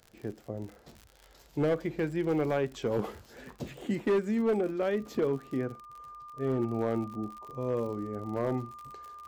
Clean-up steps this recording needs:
clipped peaks rebuilt −22 dBFS
click removal
notch filter 1,200 Hz, Q 30

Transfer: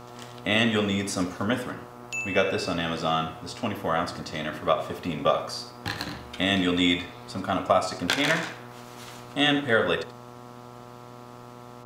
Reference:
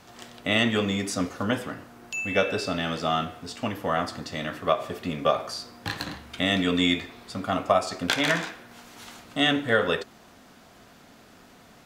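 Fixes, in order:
hum removal 121.6 Hz, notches 11
echo removal 82 ms −13.5 dB

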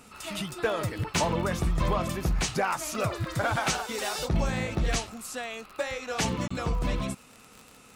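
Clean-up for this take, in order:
click removal
repair the gap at 0:06.48, 25 ms

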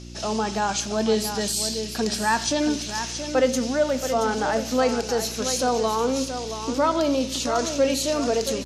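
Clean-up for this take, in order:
hum removal 59.4 Hz, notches 6
echo removal 676 ms −9 dB

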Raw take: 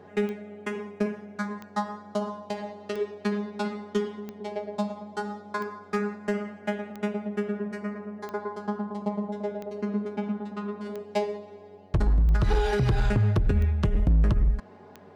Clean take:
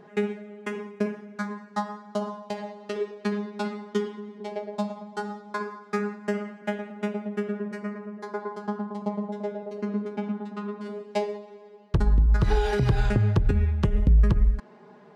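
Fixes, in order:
clipped peaks rebuilt −17 dBFS
click removal
hum removal 93.8 Hz, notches 9

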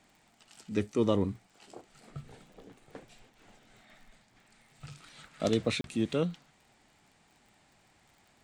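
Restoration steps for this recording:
click removal
repair the gap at 0:05.81, 32 ms

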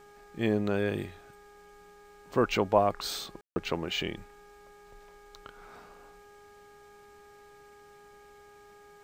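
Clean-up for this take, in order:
hum removal 410.5 Hz, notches 4
ambience match 0:03.41–0:03.56

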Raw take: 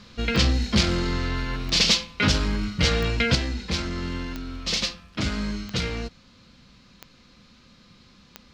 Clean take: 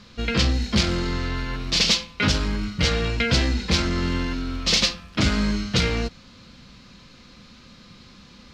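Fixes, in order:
click removal
level 0 dB, from 0:03.35 +6 dB

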